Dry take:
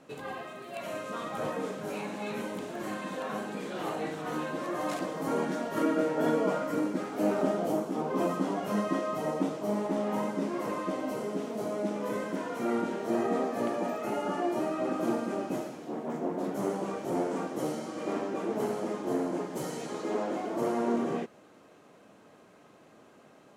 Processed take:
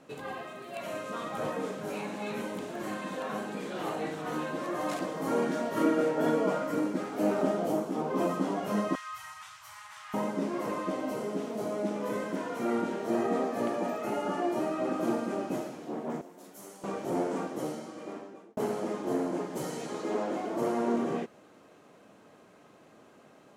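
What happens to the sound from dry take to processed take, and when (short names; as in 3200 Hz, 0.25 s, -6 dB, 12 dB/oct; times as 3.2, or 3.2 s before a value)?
5.19–6.11 doubler 34 ms -6.5 dB
8.95–10.14 inverse Chebyshev band-stop 220–470 Hz, stop band 70 dB
16.21–16.84 pre-emphasis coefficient 0.9
17.37–18.57 fade out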